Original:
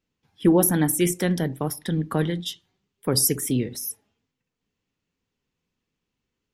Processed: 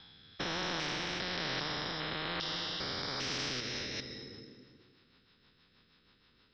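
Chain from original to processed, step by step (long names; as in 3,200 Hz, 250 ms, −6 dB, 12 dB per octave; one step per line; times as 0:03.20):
spectrum averaged block by block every 400 ms
Chebyshev low-pass with heavy ripple 5,300 Hz, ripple 9 dB
high-shelf EQ 2,600 Hz +9.5 dB
rotating-speaker cabinet horn 1.1 Hz, later 6.3 Hz, at 0:03.29
on a send at −13 dB: convolution reverb RT60 1.7 s, pre-delay 117 ms
on the sum: every bin compressed towards the loudest bin 4 to 1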